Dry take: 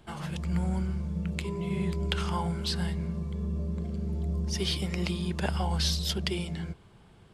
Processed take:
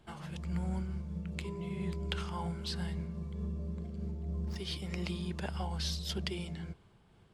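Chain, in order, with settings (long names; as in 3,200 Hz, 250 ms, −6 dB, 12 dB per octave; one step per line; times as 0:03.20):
0:04.11–0:04.56: running median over 15 samples
high-shelf EQ 10,000 Hz −4 dB
amplitude modulation by smooth noise, depth 55%
level −4.5 dB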